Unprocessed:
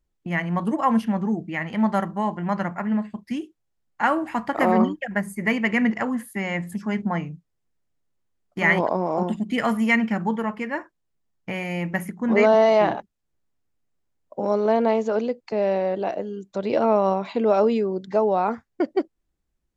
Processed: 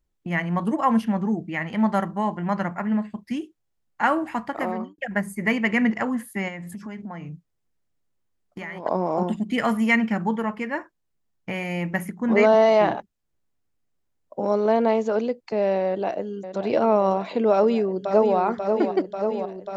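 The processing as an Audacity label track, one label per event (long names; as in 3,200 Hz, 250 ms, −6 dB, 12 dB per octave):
4.230000	4.980000	fade out
6.480000	8.860000	downward compressor 10 to 1, threshold −31 dBFS
15.860000	16.650000	delay throw 570 ms, feedback 85%, level −10.5 dB
17.510000	18.370000	delay throw 540 ms, feedback 80%, level −6.5 dB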